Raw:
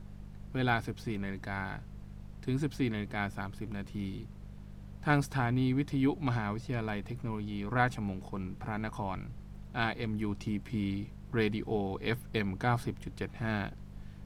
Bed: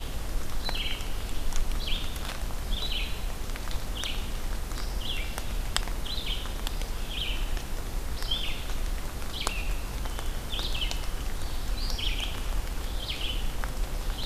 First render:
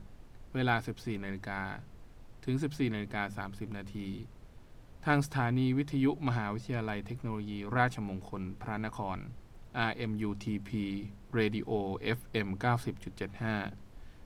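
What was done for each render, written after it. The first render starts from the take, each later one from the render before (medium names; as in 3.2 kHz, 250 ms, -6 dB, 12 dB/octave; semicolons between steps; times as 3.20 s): de-hum 50 Hz, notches 4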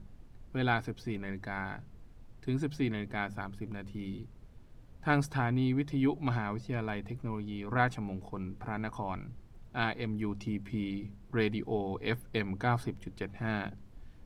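noise reduction 6 dB, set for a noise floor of -53 dBFS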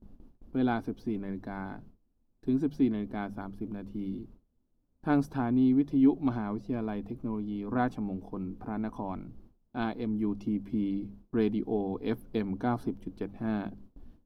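gate with hold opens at -41 dBFS; graphic EQ 125/250/2000/4000/8000 Hz -7/+9/-11/-3/-10 dB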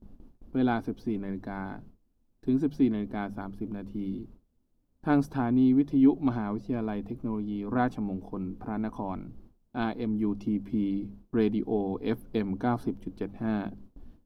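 trim +2 dB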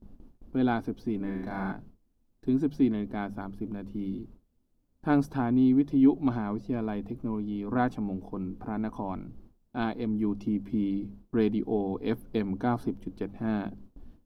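1.17–1.72 s: flutter echo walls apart 6.3 m, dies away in 1 s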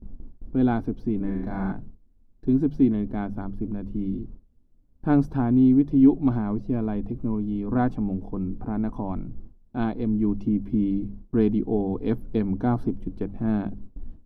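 tilt EQ -2.5 dB/octave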